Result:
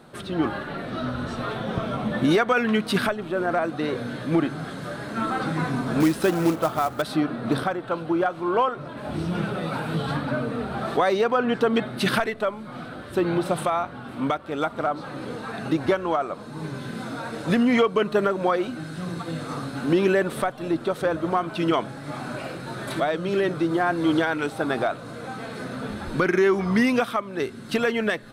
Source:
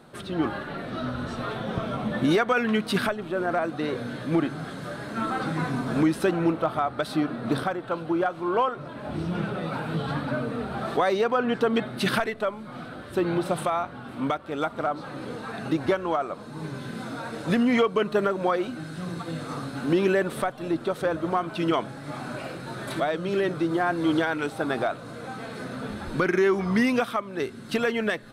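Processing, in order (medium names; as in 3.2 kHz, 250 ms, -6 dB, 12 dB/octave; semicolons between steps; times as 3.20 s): 6.00–7.02 s: short-mantissa float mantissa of 2-bit; 8.97–10.17 s: treble shelf 5.1 kHz +6 dB; trim +2 dB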